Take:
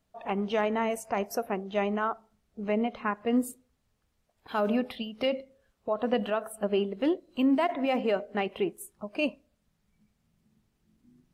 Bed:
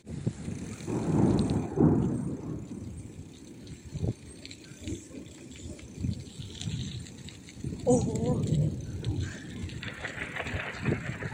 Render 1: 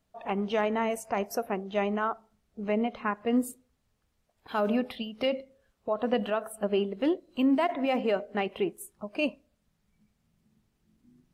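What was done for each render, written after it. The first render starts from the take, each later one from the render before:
no processing that can be heard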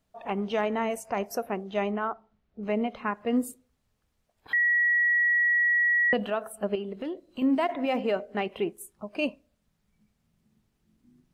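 0:01.91–0:02.63: high-frequency loss of the air 200 metres
0:04.53–0:06.13: beep over 1,920 Hz −20 dBFS
0:06.75–0:07.42: downward compressor 5 to 1, threshold −30 dBFS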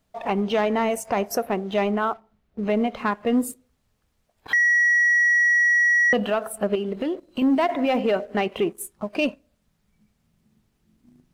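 leveller curve on the samples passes 1
in parallel at +1 dB: downward compressor, threshold −32 dBFS, peak gain reduction 12 dB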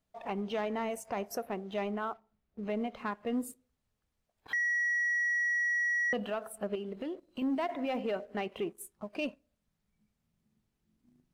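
level −12 dB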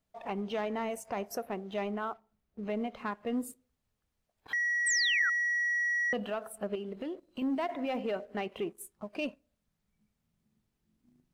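0:04.86–0:05.30: sound drawn into the spectrogram fall 1,300–8,800 Hz −31 dBFS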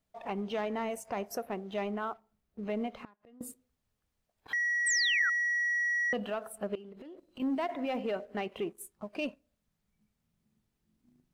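0:02.97–0:03.41: gate with flip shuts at −35 dBFS, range −25 dB
0:06.75–0:07.40: downward compressor 12 to 1, threshold −44 dBFS

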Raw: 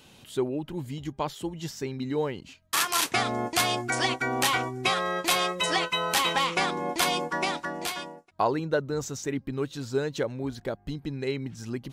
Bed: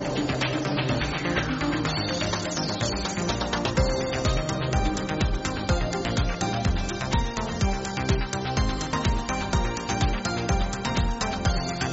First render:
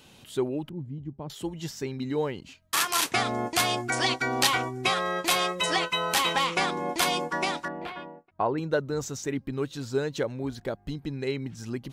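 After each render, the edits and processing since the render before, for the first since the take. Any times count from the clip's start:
0:00.69–0:01.30: resonant band-pass 150 Hz, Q 0.81
0:04.06–0:04.47: parametric band 4,500 Hz +7.5 dB 0.79 octaves
0:07.68–0:08.58: high-frequency loss of the air 480 metres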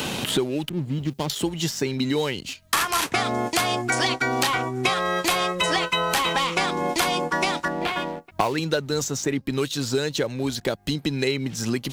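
leveller curve on the samples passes 1
multiband upward and downward compressor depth 100%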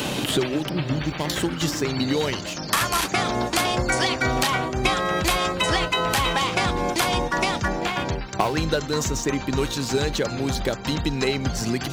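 mix in bed −4.5 dB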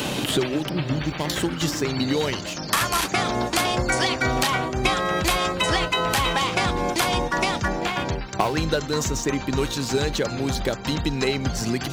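no processing that can be heard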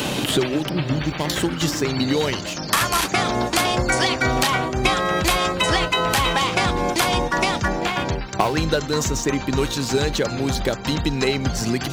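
level +2.5 dB

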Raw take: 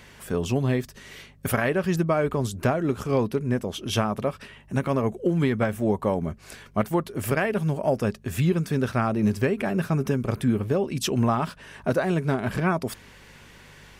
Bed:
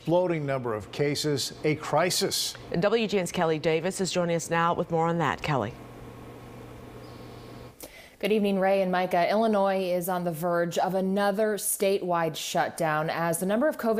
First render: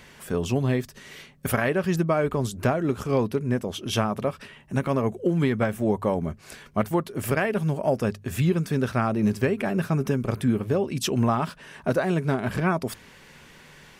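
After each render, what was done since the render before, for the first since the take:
hum removal 50 Hz, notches 2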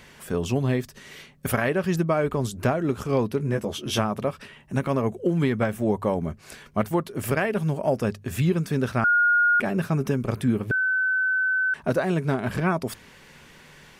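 0:03.38–0:03.99: double-tracking delay 14 ms −4 dB
0:09.04–0:09.60: beep over 1,430 Hz −16 dBFS
0:10.71–0:11.74: beep over 1,520 Hz −20 dBFS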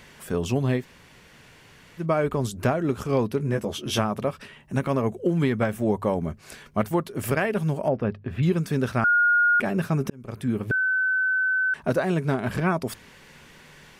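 0:00.81–0:02.02: fill with room tone, crossfade 0.10 s
0:07.88–0:08.43: high-frequency loss of the air 390 metres
0:10.10–0:10.67: fade in linear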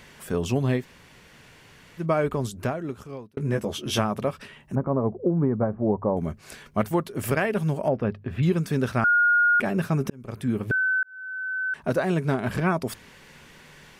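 0:02.20–0:03.37: fade out
0:04.75–0:06.17: low-pass filter 1,100 Hz 24 dB per octave
0:11.03–0:12.04: fade in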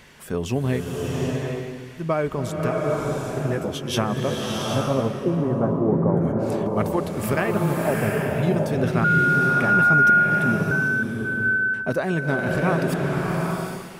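slow-attack reverb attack 780 ms, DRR −1 dB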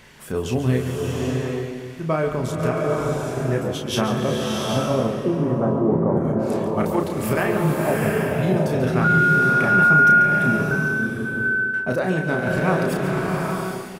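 double-tracking delay 32 ms −5 dB
on a send: single-tap delay 140 ms −10 dB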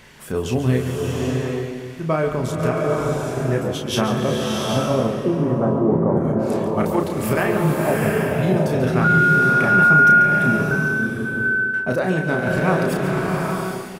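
level +1.5 dB

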